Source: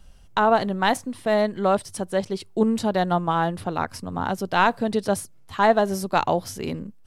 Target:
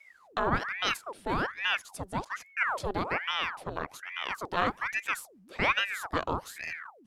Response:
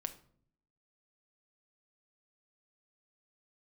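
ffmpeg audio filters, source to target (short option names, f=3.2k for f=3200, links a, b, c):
-af "aeval=exprs='val(0)*sin(2*PI*1200*n/s+1200*0.85/1.2*sin(2*PI*1.2*n/s))':c=same,volume=-6.5dB"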